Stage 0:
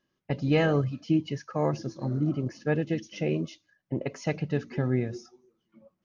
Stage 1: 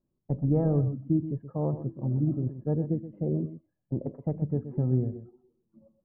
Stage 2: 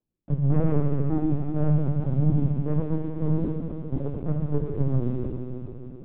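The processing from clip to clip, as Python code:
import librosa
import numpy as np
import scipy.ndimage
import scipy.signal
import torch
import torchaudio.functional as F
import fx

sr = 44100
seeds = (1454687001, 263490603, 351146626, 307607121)

y1 = scipy.signal.sosfilt(scipy.signal.butter(4, 1000.0, 'lowpass', fs=sr, output='sos'), x)
y1 = fx.tilt_eq(y1, sr, slope=-3.5)
y1 = y1 + 10.0 ** (-12.0 / 20.0) * np.pad(y1, (int(125 * sr / 1000.0), 0))[:len(y1)]
y1 = y1 * librosa.db_to_amplitude(-8.0)
y2 = fx.leveller(y1, sr, passes=2)
y2 = fx.rev_fdn(y2, sr, rt60_s=3.7, lf_ratio=1.0, hf_ratio=1.0, size_ms=41.0, drr_db=-1.5)
y2 = fx.lpc_vocoder(y2, sr, seeds[0], excitation='pitch_kept', order=16)
y2 = y2 * librosa.db_to_amplitude(-5.0)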